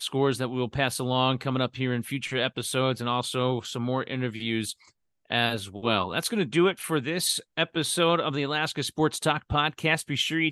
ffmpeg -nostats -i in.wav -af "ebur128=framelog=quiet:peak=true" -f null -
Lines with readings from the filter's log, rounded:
Integrated loudness:
  I:         -26.7 LUFS
  Threshold: -36.8 LUFS
Loudness range:
  LRA:         3.0 LU
  Threshold: -47.0 LUFS
  LRA low:   -28.7 LUFS
  LRA high:  -25.7 LUFS
True peak:
  Peak:       -8.6 dBFS